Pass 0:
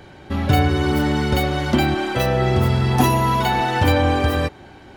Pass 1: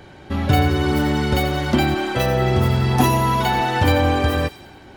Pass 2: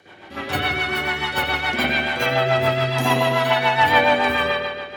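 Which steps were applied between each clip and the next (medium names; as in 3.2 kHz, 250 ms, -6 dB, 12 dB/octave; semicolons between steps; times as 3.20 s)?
feedback echo behind a high-pass 88 ms, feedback 53%, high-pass 3.4 kHz, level -9.5 dB
high-pass 980 Hz 6 dB/octave; spring tank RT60 1.6 s, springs 53 ms, chirp 80 ms, DRR -10 dB; rotary cabinet horn 7 Hz; trim -1 dB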